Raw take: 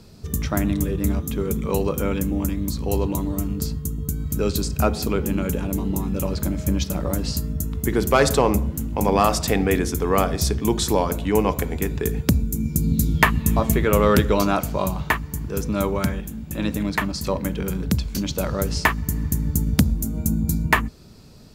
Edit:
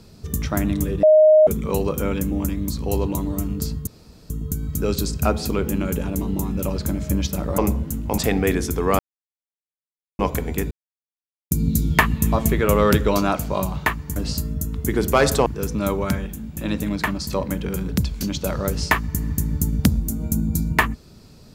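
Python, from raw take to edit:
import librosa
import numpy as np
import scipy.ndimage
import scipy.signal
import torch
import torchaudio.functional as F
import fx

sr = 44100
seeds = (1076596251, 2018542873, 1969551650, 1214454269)

y = fx.edit(x, sr, fx.bleep(start_s=1.03, length_s=0.44, hz=620.0, db=-8.5),
    fx.insert_room_tone(at_s=3.87, length_s=0.43),
    fx.move(start_s=7.15, length_s=1.3, to_s=15.4),
    fx.cut(start_s=9.05, length_s=0.37),
    fx.silence(start_s=10.23, length_s=1.2),
    fx.silence(start_s=11.95, length_s=0.8), tone=tone)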